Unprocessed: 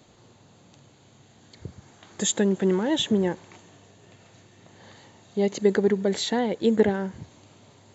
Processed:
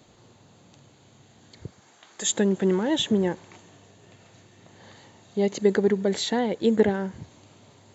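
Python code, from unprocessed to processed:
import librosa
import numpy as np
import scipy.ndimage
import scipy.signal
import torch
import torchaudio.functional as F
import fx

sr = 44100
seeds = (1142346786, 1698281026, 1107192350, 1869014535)

y = fx.highpass(x, sr, hz=fx.line((1.66, 410.0), (2.25, 940.0)), slope=6, at=(1.66, 2.25), fade=0.02)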